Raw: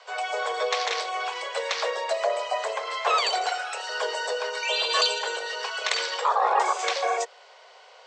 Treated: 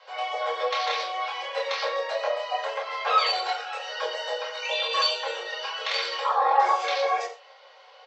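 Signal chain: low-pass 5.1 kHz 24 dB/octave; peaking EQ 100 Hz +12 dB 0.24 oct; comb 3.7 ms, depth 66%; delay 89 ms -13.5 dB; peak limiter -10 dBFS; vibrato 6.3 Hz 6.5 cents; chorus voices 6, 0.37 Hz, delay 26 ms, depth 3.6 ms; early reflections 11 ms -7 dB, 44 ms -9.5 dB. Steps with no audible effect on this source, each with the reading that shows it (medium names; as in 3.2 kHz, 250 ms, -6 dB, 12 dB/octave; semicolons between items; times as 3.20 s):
peaking EQ 100 Hz: input has nothing below 340 Hz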